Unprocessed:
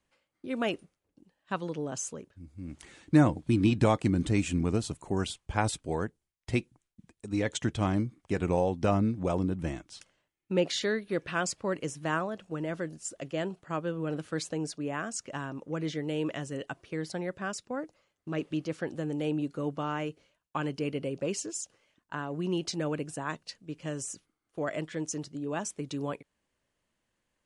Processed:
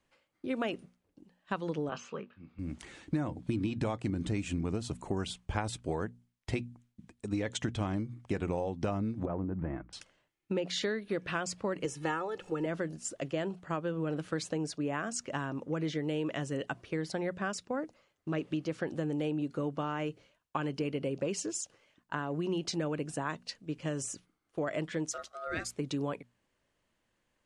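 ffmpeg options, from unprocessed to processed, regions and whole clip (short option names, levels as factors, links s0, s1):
-filter_complex "[0:a]asettb=1/sr,asplit=3[s0][s1][s2];[s0]atrim=end=1.894[s3];[s1]atrim=start=1.89:end=2.59,asetpts=PTS-STARTPTS,afade=t=in:d=0.004:c=qsin,afade=t=out:st=0.696:d=0.004:c=qsin,highpass=190,equalizer=f=190:t=q:w=4:g=4,equalizer=f=280:t=q:w=4:g=-9,equalizer=f=620:t=q:w=4:g=-4,equalizer=f=1200:t=q:w=4:g=9,equalizer=f=2600:t=q:w=4:g=8,lowpass=f=4000:w=0.5412,lowpass=f=4000:w=1.3066,asplit=2[s4][s5];[s5]adelay=20,volume=0.316[s6];[s4][s6]amix=inputs=2:normalize=0,atrim=end_sample=30870[s7];[s2]atrim=start=2.586[s8];[s3][s7]acrossfade=d=0.004:c1=hsin:c2=qsin[s9];[s9][s8]acrossfade=d=0.004:c1=qsin:c2=hsin,asettb=1/sr,asplit=3[s10][s11][s12];[s10]atrim=end=9.254[s13];[s11]atrim=start=9.25:end=9.93,asetpts=PTS-STARTPTS,afade=t=in:d=0.004:c=qsin,afade=t=out:st=0.676:d=0.004:c=qsin,lowpass=f=1800:w=0.5412,lowpass=f=1800:w=1.3066,acompressor=threshold=0.0224:ratio=3:attack=3.2:release=140:knee=1:detection=peak[s14];[s12]atrim=start=9.926[s15];[s13][s14]acrossfade=d=0.004:c1=hsin:c2=qsin[s16];[s16][s15]acrossfade=d=0.004:c1=qsin:c2=hsin,asettb=1/sr,asplit=3[s17][s18][s19];[s17]atrim=end=11.854[s20];[s18]atrim=start=11.85:end=12.66,asetpts=PTS-STARTPTS,afade=t=in:d=0.004:c=qsin,afade=t=out:st=0.806:d=0.004:c=qsin,equalizer=f=82:t=o:w=1.6:g=-5,aecho=1:1:2.3:0.8,atrim=end_sample=35721,acompressor=mode=upward:threshold=0.01:ratio=2.5:attack=3.2:release=140:knee=2.83:detection=peak[s21];[s19]atrim=start=12.656[s22];[s20][s21]acrossfade=d=0.004:c1=hsin:c2=qsin[s23];[s23][s22]acrossfade=d=0.004:c1=qsin:c2=hsin,asettb=1/sr,asplit=3[s24][s25][s26];[s24]atrim=end=25.114[s27];[s25]atrim=start=25.11:end=25.73,asetpts=PTS-STARTPTS,afade=t=in:d=0.004:c=qsin,afade=t=out:st=0.616:d=0.004:c=qsin,highpass=370,aeval=exprs='val(0)*sin(2*PI*960*n/s)':c=same,bandreject=f=840:w=6.5[s28];[s26]atrim=start=25.726[s29];[s27][s28]acrossfade=d=0.004:c1=hsin:c2=qsin[s30];[s30][s29]acrossfade=d=0.004:c1=qsin:c2=hsin,highshelf=f=7700:g=-7.5,bandreject=f=60:t=h:w=6,bandreject=f=120:t=h:w=6,bandreject=f=180:t=h:w=6,bandreject=f=240:t=h:w=6,acompressor=threshold=0.0251:ratio=10,volume=1.41"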